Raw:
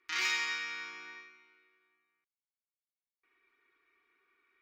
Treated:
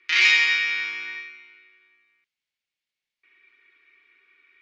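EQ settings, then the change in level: low-pass 3.9 kHz 12 dB/octave; resonant high shelf 1.6 kHz +9.5 dB, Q 1.5; +5.5 dB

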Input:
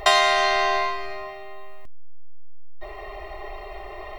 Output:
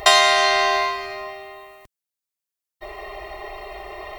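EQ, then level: high-pass 58 Hz 6 dB/octave; treble shelf 4.1 kHz +7.5 dB; +2.0 dB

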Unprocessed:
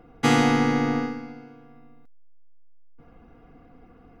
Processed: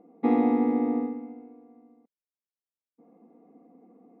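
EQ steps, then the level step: boxcar filter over 29 samples; brick-wall FIR high-pass 180 Hz; distance through air 290 m; 0.0 dB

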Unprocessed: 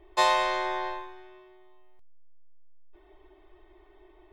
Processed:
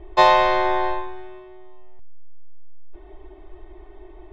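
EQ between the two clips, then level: boxcar filter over 5 samples; bass shelf 320 Hz +10.5 dB; peaking EQ 720 Hz +3 dB 0.56 oct; +6.5 dB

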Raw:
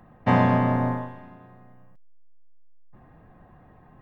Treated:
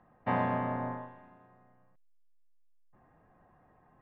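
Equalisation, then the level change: distance through air 230 m; bass shelf 350 Hz -11 dB; treble shelf 3 kHz -6.5 dB; -5.0 dB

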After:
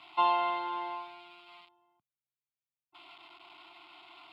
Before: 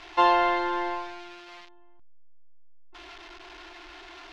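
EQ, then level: high-pass 120 Hz 24 dB/octave; static phaser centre 1.7 kHz, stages 6; -5.0 dB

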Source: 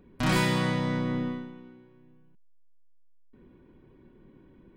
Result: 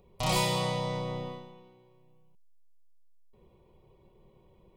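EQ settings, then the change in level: bass shelf 320 Hz -5.5 dB; static phaser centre 660 Hz, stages 4; +4.0 dB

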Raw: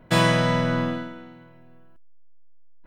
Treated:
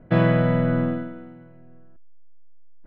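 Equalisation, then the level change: low-pass 1.3 kHz 6 dB/octave; distance through air 400 m; peaking EQ 980 Hz -9 dB 0.3 oct; +3.5 dB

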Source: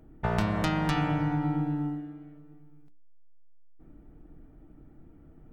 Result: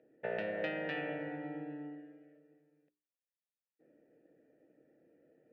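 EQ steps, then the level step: vowel filter e; band-pass 130–3500 Hz; +6.0 dB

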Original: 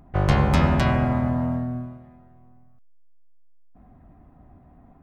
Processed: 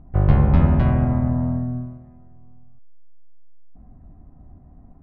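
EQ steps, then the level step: distance through air 270 m; tilt EQ -2.5 dB/octave; -3.5 dB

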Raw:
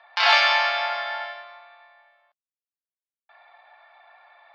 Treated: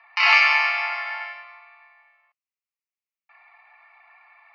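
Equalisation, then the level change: high-pass 670 Hz 6 dB/octave; high-order bell 1.9 kHz +9 dB; static phaser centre 2.3 kHz, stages 8; -2.0 dB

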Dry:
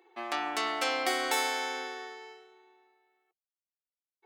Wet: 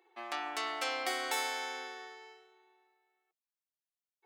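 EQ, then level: high-pass 390 Hz 6 dB/octave; -4.5 dB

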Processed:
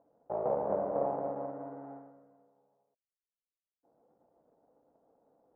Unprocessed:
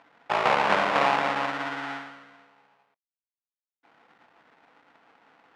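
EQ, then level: four-pole ladder low-pass 660 Hz, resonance 50%; bass shelf 74 Hz +11.5 dB; 0.0 dB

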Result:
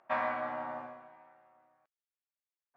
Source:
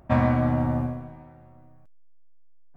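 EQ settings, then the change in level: high-pass 980 Hz 12 dB/octave; low-pass 2.4 kHz 6 dB/octave; distance through air 72 m; 0.0 dB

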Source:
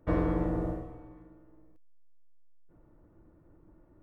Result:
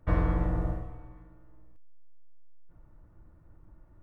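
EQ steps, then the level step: peaking EQ 360 Hz -14.5 dB 2.3 oct; treble shelf 2.2 kHz -9 dB; +8.5 dB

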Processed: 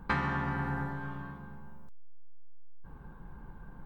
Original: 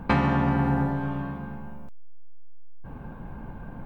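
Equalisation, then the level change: fifteen-band graphic EQ 100 Hz -10 dB, 250 Hz -9 dB, 630 Hz -11 dB, 2.5 kHz -9 dB; dynamic bell 1.9 kHz, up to +7 dB, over -48 dBFS, Q 0.98; -5.5 dB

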